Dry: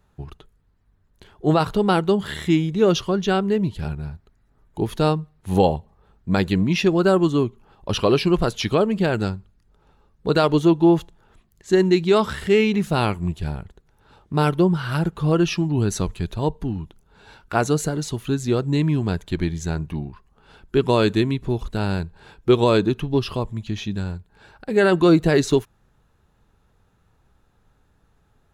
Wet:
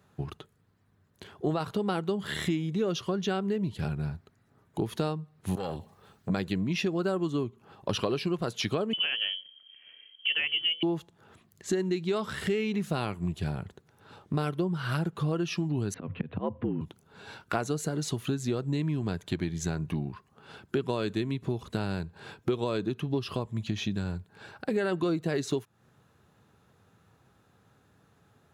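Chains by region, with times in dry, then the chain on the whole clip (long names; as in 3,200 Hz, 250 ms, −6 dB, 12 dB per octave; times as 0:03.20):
0:05.55–0:06.30: high-shelf EQ 2,400 Hz +11.5 dB + downward compressor 5 to 1, threshold −25 dBFS + saturating transformer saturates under 590 Hz
0:08.93–0:10.83: voice inversion scrambler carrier 3,200 Hz + mains-hum notches 60/120/180/240/300/360/420/480/540 Hz
0:15.94–0:16.81: volume swells 191 ms + Butterworth low-pass 2,800 Hz + frequency shifter +66 Hz
whole clip: high-pass filter 93 Hz 24 dB per octave; notch filter 890 Hz, Q 17; downward compressor 6 to 1, threshold −29 dBFS; level +2 dB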